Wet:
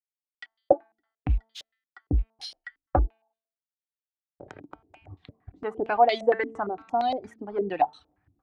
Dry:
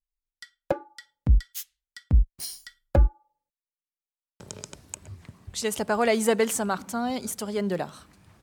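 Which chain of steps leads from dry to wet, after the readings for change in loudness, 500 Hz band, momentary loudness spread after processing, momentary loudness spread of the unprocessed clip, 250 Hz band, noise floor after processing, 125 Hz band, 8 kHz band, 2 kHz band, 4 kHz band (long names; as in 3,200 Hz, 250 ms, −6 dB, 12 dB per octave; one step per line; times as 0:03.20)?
−0.5 dB, +1.0 dB, 18 LU, 18 LU, −5.5 dB, below −85 dBFS, −5.5 dB, below −20 dB, −2.0 dB, −3.0 dB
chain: mu-law and A-law mismatch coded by A
in parallel at +1.5 dB: downward compressor, threshold −35 dBFS, peak gain reduction 19.5 dB
on the sum: reverb reduction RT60 1.5 s
parametric band 230 Hz −10 dB 0.78 octaves
hum removal 223.6 Hz, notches 22
hollow resonant body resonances 290/750 Hz, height 14 dB, ringing for 50 ms
low-pass on a step sequencer 8.7 Hz 280–3,700 Hz
level −6 dB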